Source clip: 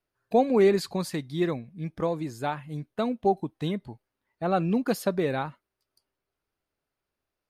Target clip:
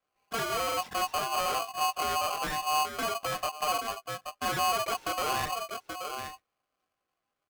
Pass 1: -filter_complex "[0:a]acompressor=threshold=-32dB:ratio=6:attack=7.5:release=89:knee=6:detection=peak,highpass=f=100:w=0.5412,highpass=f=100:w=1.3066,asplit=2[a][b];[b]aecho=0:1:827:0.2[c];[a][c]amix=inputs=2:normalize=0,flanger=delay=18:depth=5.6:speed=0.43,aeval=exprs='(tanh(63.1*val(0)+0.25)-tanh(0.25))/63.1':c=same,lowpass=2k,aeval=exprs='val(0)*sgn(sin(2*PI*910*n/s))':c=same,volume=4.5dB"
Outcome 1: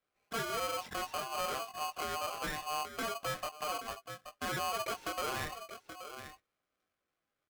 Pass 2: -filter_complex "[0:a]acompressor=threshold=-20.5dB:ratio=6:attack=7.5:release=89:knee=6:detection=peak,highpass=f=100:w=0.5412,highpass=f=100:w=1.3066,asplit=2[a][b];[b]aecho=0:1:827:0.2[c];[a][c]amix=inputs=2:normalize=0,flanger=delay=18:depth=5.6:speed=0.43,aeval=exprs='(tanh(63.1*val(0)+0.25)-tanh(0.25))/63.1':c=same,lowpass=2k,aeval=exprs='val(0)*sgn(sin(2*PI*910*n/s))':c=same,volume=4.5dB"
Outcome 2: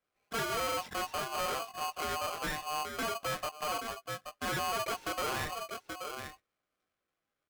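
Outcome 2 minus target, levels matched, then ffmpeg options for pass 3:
125 Hz band +4.5 dB
-filter_complex "[0:a]acompressor=threshold=-20.5dB:ratio=6:attack=7.5:release=89:knee=6:detection=peak,highpass=f=100:w=0.5412,highpass=f=100:w=1.3066,asplit=2[a][b];[b]aecho=0:1:827:0.2[c];[a][c]amix=inputs=2:normalize=0,flanger=delay=18:depth=5.6:speed=0.43,aeval=exprs='(tanh(63.1*val(0)+0.25)-tanh(0.25))/63.1':c=same,lowpass=2k,equalizer=f=130:w=0.79:g=9.5,aeval=exprs='val(0)*sgn(sin(2*PI*910*n/s))':c=same,volume=4.5dB"

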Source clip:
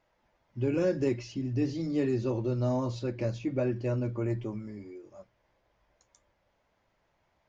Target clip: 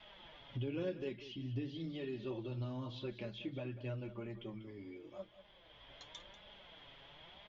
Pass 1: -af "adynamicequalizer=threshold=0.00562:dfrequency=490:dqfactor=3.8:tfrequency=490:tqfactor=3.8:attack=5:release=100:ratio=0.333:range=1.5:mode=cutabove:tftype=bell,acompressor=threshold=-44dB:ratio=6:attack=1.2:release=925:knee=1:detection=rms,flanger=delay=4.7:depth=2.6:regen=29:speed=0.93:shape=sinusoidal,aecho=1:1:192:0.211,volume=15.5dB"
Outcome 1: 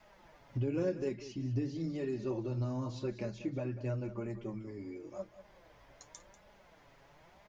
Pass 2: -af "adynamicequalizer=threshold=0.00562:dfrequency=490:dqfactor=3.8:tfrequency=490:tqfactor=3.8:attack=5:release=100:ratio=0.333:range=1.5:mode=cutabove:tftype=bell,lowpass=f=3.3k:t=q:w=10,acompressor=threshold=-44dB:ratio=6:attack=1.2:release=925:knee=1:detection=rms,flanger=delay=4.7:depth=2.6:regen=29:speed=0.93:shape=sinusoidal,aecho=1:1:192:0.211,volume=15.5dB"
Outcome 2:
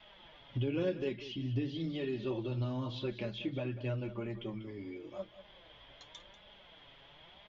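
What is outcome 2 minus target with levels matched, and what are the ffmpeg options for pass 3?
compressor: peak gain reduction -6 dB
-af "adynamicequalizer=threshold=0.00562:dfrequency=490:dqfactor=3.8:tfrequency=490:tqfactor=3.8:attack=5:release=100:ratio=0.333:range=1.5:mode=cutabove:tftype=bell,lowpass=f=3.3k:t=q:w=10,acompressor=threshold=-51dB:ratio=6:attack=1.2:release=925:knee=1:detection=rms,flanger=delay=4.7:depth=2.6:regen=29:speed=0.93:shape=sinusoidal,aecho=1:1:192:0.211,volume=15.5dB"

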